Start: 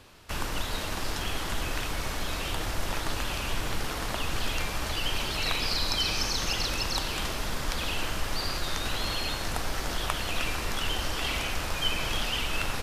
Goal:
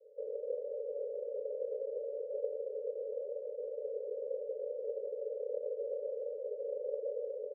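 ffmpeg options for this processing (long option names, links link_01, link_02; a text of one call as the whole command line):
ffmpeg -i in.wav -filter_complex "[0:a]afreqshift=-130,aeval=exprs='0.299*(cos(1*acos(clip(val(0)/0.299,-1,1)))-cos(1*PI/2))+0.075*(cos(4*acos(clip(val(0)/0.299,-1,1)))-cos(4*PI/2))+0.00299*(cos(5*acos(clip(val(0)/0.299,-1,1)))-cos(5*PI/2))+0.00841*(cos(7*acos(clip(val(0)/0.299,-1,1)))-cos(7*PI/2))+0.0211*(cos(8*acos(clip(val(0)/0.299,-1,1)))-cos(8*PI/2))':channel_layout=same,asoftclip=type=tanh:threshold=-25dB,asuperpass=centerf=500:order=20:qfactor=3,asplit=2[link_01][link_02];[link_02]aecho=0:1:202|404|606:0.15|0.0554|0.0205[link_03];[link_01][link_03]amix=inputs=2:normalize=0,atempo=1.7,volume=11dB" out.wav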